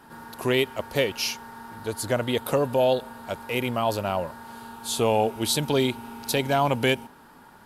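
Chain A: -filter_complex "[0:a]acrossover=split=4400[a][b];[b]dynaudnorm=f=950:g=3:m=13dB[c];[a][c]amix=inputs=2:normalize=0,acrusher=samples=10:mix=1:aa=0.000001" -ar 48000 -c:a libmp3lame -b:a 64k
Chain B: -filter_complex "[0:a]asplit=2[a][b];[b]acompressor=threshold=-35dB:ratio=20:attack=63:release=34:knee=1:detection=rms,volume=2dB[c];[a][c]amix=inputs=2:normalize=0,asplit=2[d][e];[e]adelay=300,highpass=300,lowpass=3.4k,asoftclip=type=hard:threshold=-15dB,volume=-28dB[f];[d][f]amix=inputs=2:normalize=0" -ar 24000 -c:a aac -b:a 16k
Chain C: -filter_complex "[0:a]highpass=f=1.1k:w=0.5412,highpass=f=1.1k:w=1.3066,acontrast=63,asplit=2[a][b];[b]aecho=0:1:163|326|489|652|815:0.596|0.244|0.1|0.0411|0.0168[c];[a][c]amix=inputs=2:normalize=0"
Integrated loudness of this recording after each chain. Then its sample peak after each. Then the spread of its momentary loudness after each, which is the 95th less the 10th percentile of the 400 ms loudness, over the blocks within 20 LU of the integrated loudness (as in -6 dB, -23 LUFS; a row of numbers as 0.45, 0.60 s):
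-24.5, -22.5, -23.5 LUFS; -4.0, -5.0, -5.5 dBFS; 14, 12, 12 LU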